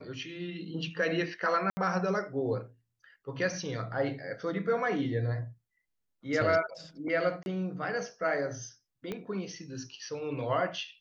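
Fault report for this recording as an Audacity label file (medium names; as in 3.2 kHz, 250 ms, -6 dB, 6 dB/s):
1.700000	1.770000	dropout 70 ms
7.430000	7.460000	dropout 31 ms
9.120000	9.120000	pop -22 dBFS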